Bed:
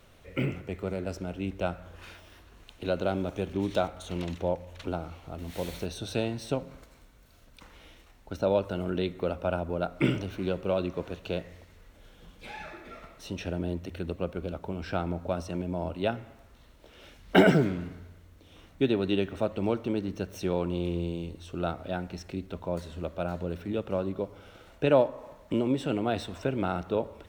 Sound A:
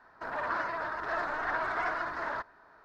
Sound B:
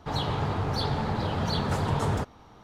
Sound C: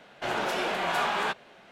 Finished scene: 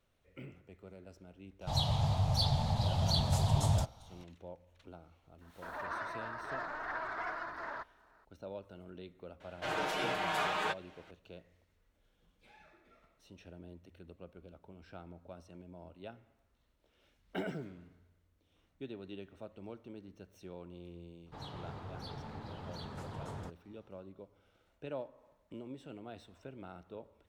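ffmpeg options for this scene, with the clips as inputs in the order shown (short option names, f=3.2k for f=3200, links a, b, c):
-filter_complex "[2:a]asplit=2[a][b];[0:a]volume=-19.5dB[c];[a]firequalizer=gain_entry='entry(120,0);entry(370,-25);entry(630,-2);entry(1400,-17);entry(3500,0);entry(6900,3)':delay=0.05:min_phase=1[d];[3:a]aecho=1:1:6.5:0.86[e];[d]atrim=end=2.63,asetpts=PTS-STARTPTS,afade=t=in:d=0.004:c=hsin,afade=t=out:st=2.626:d=0.004:c=hsin,adelay=1610[f];[1:a]atrim=end=2.84,asetpts=PTS-STARTPTS,volume=-7.5dB,afade=t=in:d=0.004:c=hsin,afade=t=out:st=2.836:d=0.004:c=hsin,adelay=238581S[g];[e]atrim=end=1.71,asetpts=PTS-STARTPTS,volume=-8dB,afade=t=in:d=0.004:c=hsin,afade=t=out:st=1.706:d=0.004:c=hsin,adelay=9400[h];[b]atrim=end=2.63,asetpts=PTS-STARTPTS,volume=-17.5dB,afade=t=in:d=0.004:c=hsin,afade=t=out:st=2.626:d=0.004:c=hsin,adelay=21260[i];[c][f][g][h][i]amix=inputs=5:normalize=0"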